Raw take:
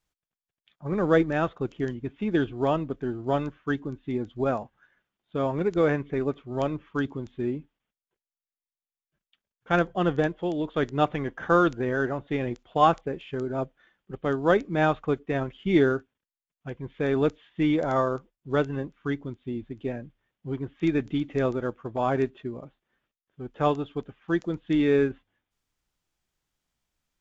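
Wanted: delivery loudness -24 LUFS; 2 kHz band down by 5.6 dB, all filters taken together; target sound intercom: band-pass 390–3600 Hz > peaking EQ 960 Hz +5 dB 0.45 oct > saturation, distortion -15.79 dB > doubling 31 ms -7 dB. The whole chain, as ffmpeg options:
-filter_complex "[0:a]highpass=390,lowpass=3600,equalizer=f=960:t=o:w=0.45:g=5,equalizer=f=2000:t=o:g=-8.5,asoftclip=threshold=0.158,asplit=2[s0][s1];[s1]adelay=31,volume=0.447[s2];[s0][s2]amix=inputs=2:normalize=0,volume=2.11"

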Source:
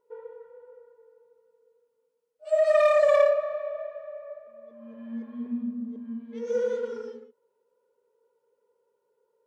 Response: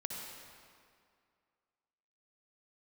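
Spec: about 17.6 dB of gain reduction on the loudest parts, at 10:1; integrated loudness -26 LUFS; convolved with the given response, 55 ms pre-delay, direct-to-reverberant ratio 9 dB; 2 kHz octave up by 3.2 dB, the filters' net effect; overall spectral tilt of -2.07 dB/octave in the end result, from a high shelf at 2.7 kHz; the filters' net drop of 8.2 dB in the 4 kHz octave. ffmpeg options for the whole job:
-filter_complex "[0:a]equalizer=f=2000:t=o:g=8.5,highshelf=f=2700:g=-8.5,equalizer=f=4000:t=o:g=-7.5,acompressor=threshold=0.02:ratio=10,asplit=2[s0][s1];[1:a]atrim=start_sample=2205,adelay=55[s2];[s1][s2]afir=irnorm=-1:irlink=0,volume=0.335[s3];[s0][s3]amix=inputs=2:normalize=0,volume=4.47"

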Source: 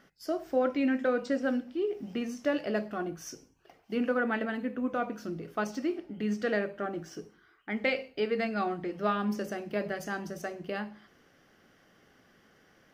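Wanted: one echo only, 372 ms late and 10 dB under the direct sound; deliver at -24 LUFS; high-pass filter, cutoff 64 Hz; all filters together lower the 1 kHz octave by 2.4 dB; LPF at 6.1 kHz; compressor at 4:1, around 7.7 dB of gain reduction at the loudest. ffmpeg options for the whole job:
-af "highpass=64,lowpass=6100,equalizer=f=1000:t=o:g=-3.5,acompressor=threshold=0.0224:ratio=4,aecho=1:1:372:0.316,volume=4.73"

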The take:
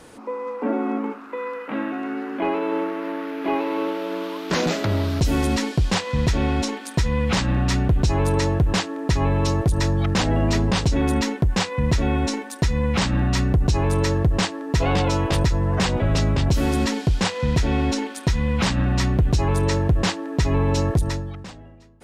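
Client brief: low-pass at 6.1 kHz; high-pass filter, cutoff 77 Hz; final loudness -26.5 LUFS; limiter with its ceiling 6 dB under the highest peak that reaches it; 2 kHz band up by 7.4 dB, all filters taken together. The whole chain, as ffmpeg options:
-af "highpass=77,lowpass=6100,equalizer=f=2000:t=o:g=9,volume=0.668,alimiter=limit=0.168:level=0:latency=1"

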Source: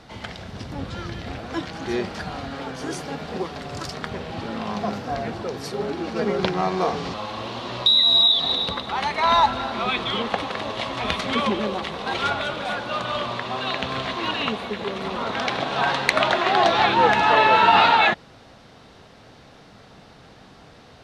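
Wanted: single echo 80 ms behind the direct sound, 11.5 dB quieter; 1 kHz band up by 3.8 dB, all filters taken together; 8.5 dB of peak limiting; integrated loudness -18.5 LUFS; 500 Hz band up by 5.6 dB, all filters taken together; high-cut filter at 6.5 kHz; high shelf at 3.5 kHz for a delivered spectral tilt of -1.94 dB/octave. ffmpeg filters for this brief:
-af "lowpass=6500,equalizer=f=500:t=o:g=6.5,equalizer=f=1000:t=o:g=3,highshelf=f=3500:g=-5.5,alimiter=limit=0.376:level=0:latency=1,aecho=1:1:80:0.266,volume=1.41"

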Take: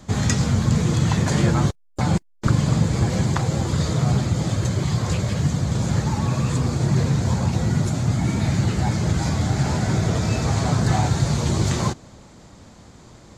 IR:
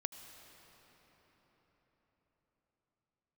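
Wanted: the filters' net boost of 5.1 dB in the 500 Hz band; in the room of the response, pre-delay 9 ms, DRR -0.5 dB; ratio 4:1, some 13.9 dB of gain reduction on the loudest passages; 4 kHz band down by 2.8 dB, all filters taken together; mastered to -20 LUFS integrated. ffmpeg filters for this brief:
-filter_complex "[0:a]equalizer=f=500:t=o:g=6.5,equalizer=f=4000:t=o:g=-3.5,acompressor=threshold=0.0282:ratio=4,asplit=2[s0][s1];[1:a]atrim=start_sample=2205,adelay=9[s2];[s1][s2]afir=irnorm=-1:irlink=0,volume=1.19[s3];[s0][s3]amix=inputs=2:normalize=0,volume=2.82"

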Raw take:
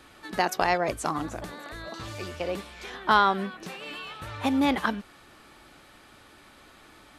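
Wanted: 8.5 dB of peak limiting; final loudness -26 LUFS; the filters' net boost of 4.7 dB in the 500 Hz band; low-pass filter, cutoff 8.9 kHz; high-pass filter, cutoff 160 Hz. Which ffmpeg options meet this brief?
-af "highpass=160,lowpass=8900,equalizer=f=500:t=o:g=6,volume=1.58,alimiter=limit=0.282:level=0:latency=1"

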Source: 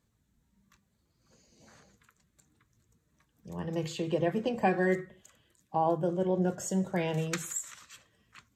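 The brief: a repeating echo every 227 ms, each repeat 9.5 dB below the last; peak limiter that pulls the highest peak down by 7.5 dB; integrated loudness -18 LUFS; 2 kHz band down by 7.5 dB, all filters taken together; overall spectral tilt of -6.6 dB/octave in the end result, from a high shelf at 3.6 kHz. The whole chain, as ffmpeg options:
-af "equalizer=f=2000:t=o:g=-7,highshelf=f=3600:g=-8.5,alimiter=limit=0.0708:level=0:latency=1,aecho=1:1:227|454|681|908:0.335|0.111|0.0365|0.012,volume=6.31"

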